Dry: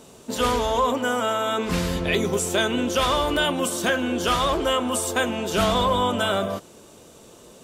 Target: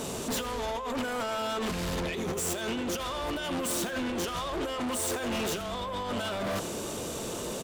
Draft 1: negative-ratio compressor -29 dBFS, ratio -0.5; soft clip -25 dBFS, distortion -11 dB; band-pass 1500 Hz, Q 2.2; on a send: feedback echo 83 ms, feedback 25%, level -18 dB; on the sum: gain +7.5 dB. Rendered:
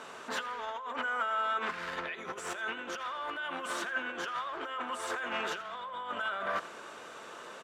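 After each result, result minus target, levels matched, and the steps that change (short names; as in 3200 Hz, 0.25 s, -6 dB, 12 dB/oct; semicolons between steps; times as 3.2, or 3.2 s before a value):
2000 Hz band +6.5 dB; soft clip: distortion -7 dB
remove: band-pass 1500 Hz, Q 2.2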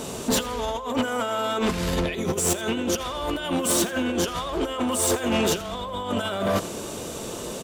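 soft clip: distortion -7 dB
change: soft clip -37 dBFS, distortion -3 dB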